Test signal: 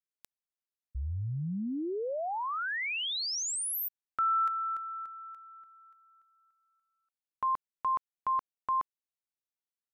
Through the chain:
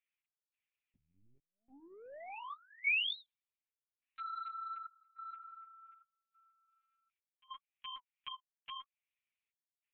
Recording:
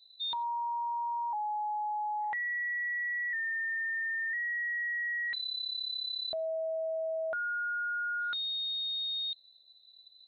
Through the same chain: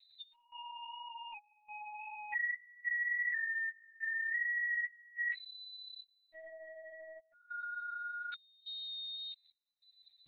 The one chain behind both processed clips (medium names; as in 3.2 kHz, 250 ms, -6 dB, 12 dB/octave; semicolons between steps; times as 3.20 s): compression 3:1, threshold -41 dBFS; sine folder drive 12 dB, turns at -23.5 dBFS; trance gate "xx...xxxxxx" 142 bpm -24 dB; band-pass filter 2.4 kHz, Q 4.9; flange 1.8 Hz, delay 5.5 ms, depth 5.2 ms, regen -22%; overload inside the chain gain 30 dB; LPC vocoder at 8 kHz pitch kept; trim +2.5 dB